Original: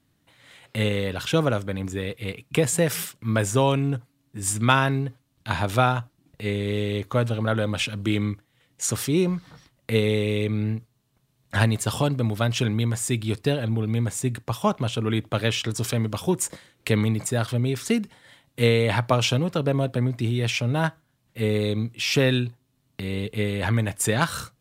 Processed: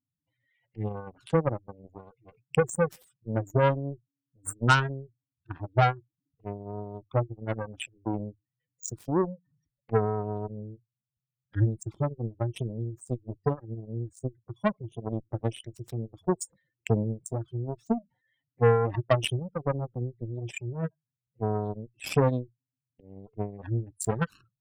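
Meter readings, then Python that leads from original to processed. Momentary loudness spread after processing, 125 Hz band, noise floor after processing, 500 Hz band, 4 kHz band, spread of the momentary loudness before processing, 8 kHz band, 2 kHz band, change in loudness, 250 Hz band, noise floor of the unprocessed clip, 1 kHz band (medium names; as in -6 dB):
16 LU, -6.0 dB, under -85 dBFS, -4.5 dB, -12.5 dB, 9 LU, -12.5 dB, -7.5 dB, -5.5 dB, -8.0 dB, -69 dBFS, -3.5 dB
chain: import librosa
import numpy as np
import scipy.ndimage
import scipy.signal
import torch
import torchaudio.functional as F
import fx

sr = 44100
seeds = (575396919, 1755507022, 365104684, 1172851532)

y = fx.spec_expand(x, sr, power=3.5)
y = fx.cheby_harmonics(y, sr, harmonics=(3, 5, 7), levels_db=(-11, -20, -20), full_scale_db=-8.5)
y = F.gain(torch.from_numpy(y), 4.0).numpy()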